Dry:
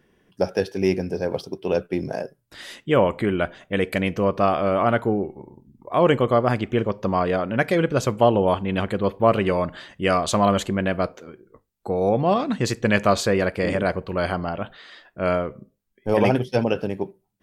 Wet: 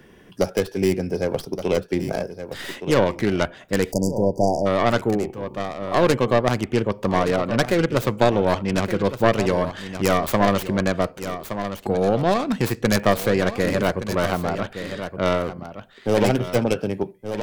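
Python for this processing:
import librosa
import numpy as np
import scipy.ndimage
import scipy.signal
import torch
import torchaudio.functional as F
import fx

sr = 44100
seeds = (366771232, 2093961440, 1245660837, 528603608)

p1 = fx.tracing_dist(x, sr, depth_ms=0.48)
p2 = p1 + fx.echo_single(p1, sr, ms=1169, db=-13.5, dry=0)
p3 = fx.spec_erase(p2, sr, start_s=3.92, length_s=0.74, low_hz=990.0, high_hz=4600.0)
y = fx.band_squash(p3, sr, depth_pct=40)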